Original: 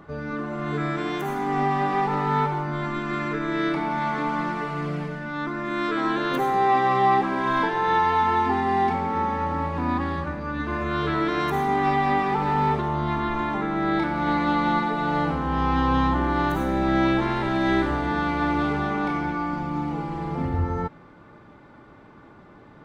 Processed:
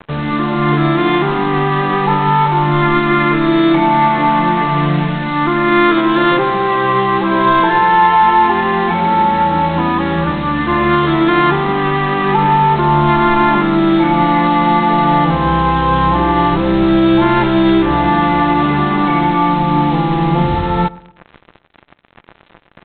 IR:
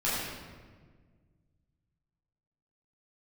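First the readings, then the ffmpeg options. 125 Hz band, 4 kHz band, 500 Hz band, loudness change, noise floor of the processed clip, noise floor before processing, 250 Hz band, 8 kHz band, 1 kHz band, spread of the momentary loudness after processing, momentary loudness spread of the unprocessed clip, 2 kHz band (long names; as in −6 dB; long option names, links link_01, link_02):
+12.0 dB, +13.0 dB, +11.0 dB, +11.5 dB, −48 dBFS, −49 dBFS, +12.0 dB, can't be measured, +11.0 dB, 4 LU, 8 LU, +10.5 dB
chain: -filter_complex "[0:a]acontrast=82,alimiter=limit=-11.5dB:level=0:latency=1:release=264,aecho=1:1:5.8:0.7,aresample=8000,acrusher=bits=4:mix=0:aa=0.5,aresample=44100,asplit=2[link_01][link_02];[link_02]adelay=118,lowpass=frequency=1500:poles=1,volume=-21dB,asplit=2[link_03][link_04];[link_04]adelay=118,lowpass=frequency=1500:poles=1,volume=0.45,asplit=2[link_05][link_06];[link_06]adelay=118,lowpass=frequency=1500:poles=1,volume=0.45[link_07];[link_01][link_03][link_05][link_07]amix=inputs=4:normalize=0,asplit=2[link_08][link_09];[1:a]atrim=start_sample=2205,atrim=end_sample=3969[link_10];[link_09][link_10]afir=irnorm=-1:irlink=0,volume=-29.5dB[link_11];[link_08][link_11]amix=inputs=2:normalize=0,volume=5.5dB"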